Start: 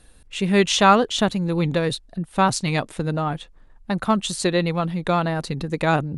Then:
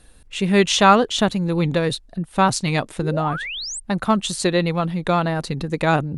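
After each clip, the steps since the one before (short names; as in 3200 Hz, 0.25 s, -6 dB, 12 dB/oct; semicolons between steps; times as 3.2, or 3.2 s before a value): painted sound rise, 3.01–3.8, 310–9000 Hz -31 dBFS; gain +1.5 dB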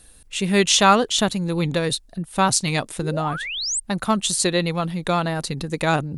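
high shelf 4700 Hz +12 dB; gain -2.5 dB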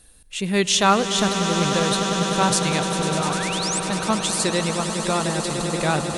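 swelling echo 0.1 s, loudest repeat 8, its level -12.5 dB; gain -2.5 dB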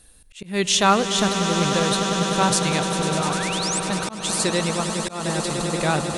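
auto swell 0.218 s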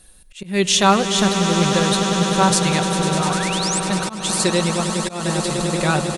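comb 5.4 ms, depth 40%; gain +2 dB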